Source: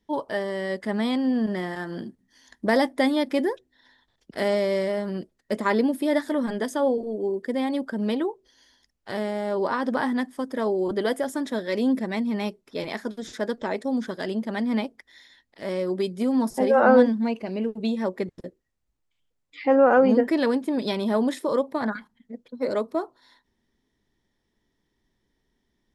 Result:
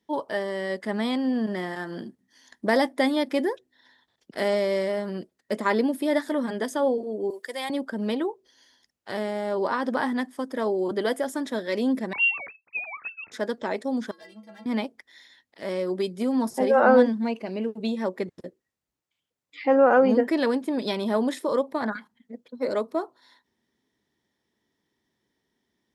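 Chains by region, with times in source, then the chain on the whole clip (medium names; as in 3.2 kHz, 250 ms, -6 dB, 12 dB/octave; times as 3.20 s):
7.30–7.70 s: high-pass 480 Hz + tilt EQ +3 dB/octave
12.13–13.32 s: formants replaced by sine waves + frequency inversion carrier 3 kHz
14.11–14.66 s: bass shelf 390 Hz -7 dB + overload inside the chain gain 27 dB + inharmonic resonator 99 Hz, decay 0.51 s, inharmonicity 0.03
whole clip: high-pass 91 Hz; bass shelf 180 Hz -5.5 dB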